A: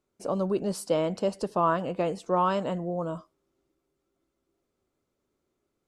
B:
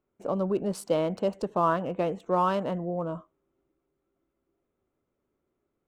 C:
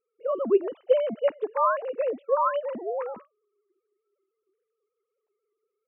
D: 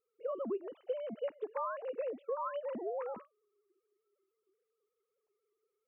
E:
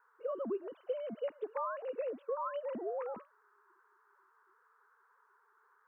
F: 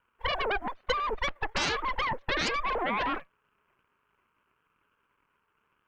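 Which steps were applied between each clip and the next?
adaptive Wiener filter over 9 samples
three sine waves on the formant tracks; level +2 dB
downward compressor 6 to 1, threshold −32 dBFS, peak gain reduction 16.5 dB; level −3 dB
noise in a band 910–1,600 Hz −70 dBFS
harmonic generator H 3 −7 dB, 5 −32 dB, 8 −7 dB, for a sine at −26.5 dBFS; level +7.5 dB

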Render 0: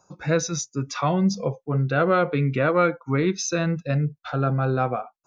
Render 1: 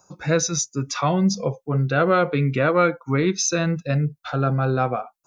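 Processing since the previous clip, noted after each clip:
high-shelf EQ 6,200 Hz +9 dB
level +1.5 dB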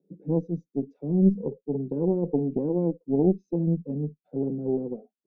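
elliptic band-pass filter 170–440 Hz, stop band 50 dB
harmonic generator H 2 −10 dB, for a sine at −9.5 dBFS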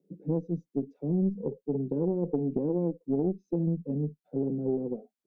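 downward compressor 5 to 1, threshold −24 dBFS, peak gain reduction 10 dB

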